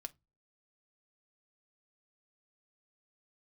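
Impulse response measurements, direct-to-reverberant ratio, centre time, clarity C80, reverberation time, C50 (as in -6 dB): 7.5 dB, 2 ms, 36.5 dB, 0.20 s, 25.5 dB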